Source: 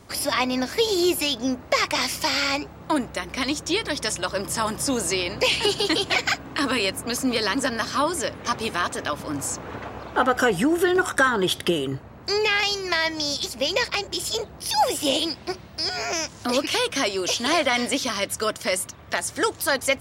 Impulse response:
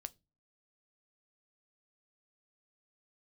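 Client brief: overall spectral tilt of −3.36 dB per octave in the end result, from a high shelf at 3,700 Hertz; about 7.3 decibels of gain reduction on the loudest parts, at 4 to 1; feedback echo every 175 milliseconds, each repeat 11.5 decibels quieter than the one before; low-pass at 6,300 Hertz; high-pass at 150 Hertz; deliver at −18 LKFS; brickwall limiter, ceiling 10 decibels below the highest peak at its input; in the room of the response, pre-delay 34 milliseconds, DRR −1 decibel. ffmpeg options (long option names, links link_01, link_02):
-filter_complex "[0:a]highpass=150,lowpass=6300,highshelf=frequency=3700:gain=-8.5,acompressor=threshold=-25dB:ratio=4,alimiter=limit=-20.5dB:level=0:latency=1,aecho=1:1:175|350|525:0.266|0.0718|0.0194,asplit=2[link_01][link_02];[1:a]atrim=start_sample=2205,adelay=34[link_03];[link_02][link_03]afir=irnorm=-1:irlink=0,volume=5.5dB[link_04];[link_01][link_04]amix=inputs=2:normalize=0,volume=9.5dB"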